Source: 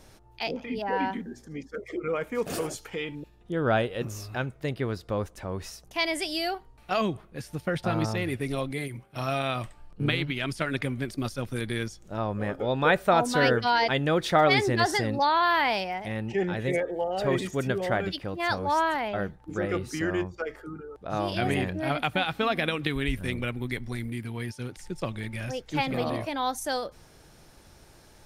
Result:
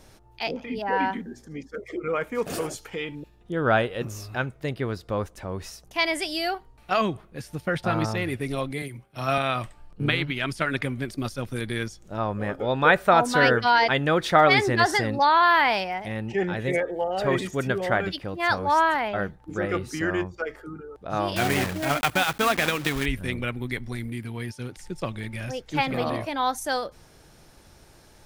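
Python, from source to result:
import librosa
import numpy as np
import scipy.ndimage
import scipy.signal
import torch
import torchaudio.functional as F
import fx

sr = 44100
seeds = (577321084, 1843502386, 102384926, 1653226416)

y = fx.block_float(x, sr, bits=3, at=(21.36, 23.06))
y = fx.dynamic_eq(y, sr, hz=1400.0, q=0.81, threshold_db=-35.0, ratio=4.0, max_db=5)
y = fx.band_widen(y, sr, depth_pct=40, at=(8.82, 9.38))
y = F.gain(torch.from_numpy(y), 1.0).numpy()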